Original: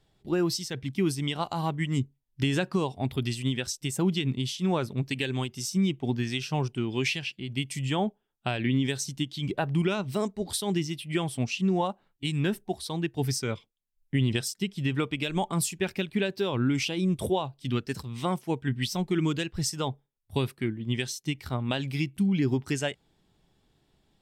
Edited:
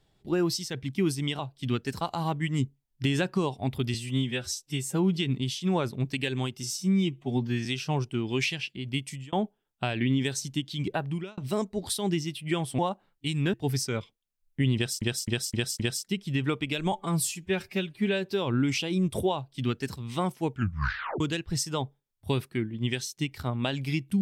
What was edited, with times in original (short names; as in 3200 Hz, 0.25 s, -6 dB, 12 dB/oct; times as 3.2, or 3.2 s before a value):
3.32–4.13 stretch 1.5×
5.61–6.29 stretch 1.5×
7.63–7.96 fade out
9.54–10.01 fade out
11.42–11.77 cut
12.52–13.08 cut
14.3–14.56 loop, 5 plays
15.43–16.31 stretch 1.5×
17.41–18.03 copy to 1.39
18.58 tape stop 0.69 s